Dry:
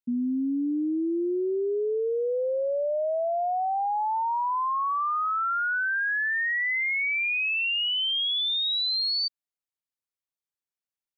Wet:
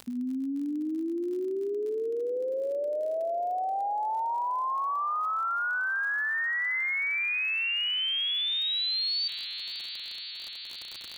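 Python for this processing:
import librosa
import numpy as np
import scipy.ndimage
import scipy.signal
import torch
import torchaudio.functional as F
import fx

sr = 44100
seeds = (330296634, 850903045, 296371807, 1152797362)

p1 = fx.low_shelf(x, sr, hz=430.0, db=-6.0)
p2 = p1 + fx.echo_heads(p1, sr, ms=172, heads='first and third', feedback_pct=72, wet_db=-21.0, dry=0)
p3 = fx.dmg_crackle(p2, sr, seeds[0], per_s=47.0, level_db=-39.0)
p4 = fx.hum_notches(p3, sr, base_hz=60, count=4)
p5 = fx.env_flatten(p4, sr, amount_pct=50)
y = p5 * 10.0 ** (-2.5 / 20.0)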